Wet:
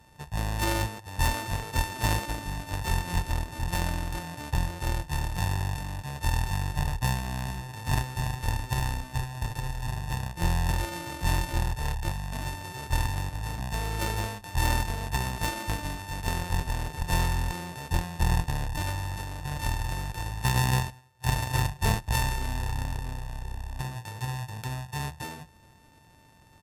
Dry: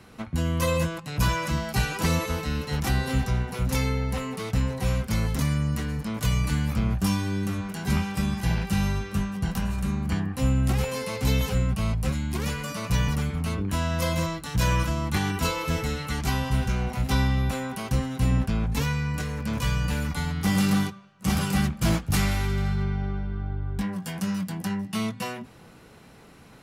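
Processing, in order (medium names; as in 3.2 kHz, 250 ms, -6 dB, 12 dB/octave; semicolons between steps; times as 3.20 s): sorted samples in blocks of 32 samples; pitch shift -7.5 st; Chebyshev shaper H 3 -14 dB, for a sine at -12 dBFS; trim +2 dB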